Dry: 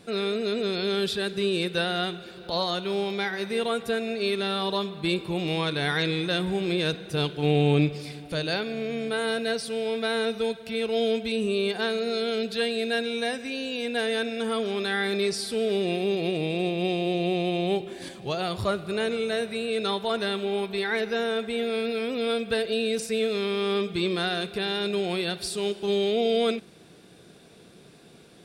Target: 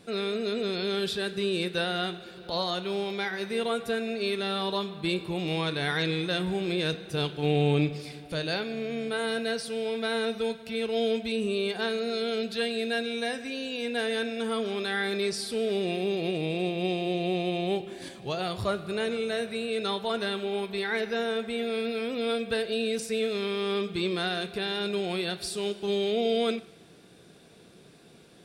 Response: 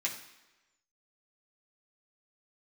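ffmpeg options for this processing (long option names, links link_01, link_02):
-filter_complex "[0:a]asplit=2[link_01][link_02];[1:a]atrim=start_sample=2205,asetrate=36603,aresample=44100,adelay=19[link_03];[link_02][link_03]afir=irnorm=-1:irlink=0,volume=-18dB[link_04];[link_01][link_04]amix=inputs=2:normalize=0,volume=-2.5dB"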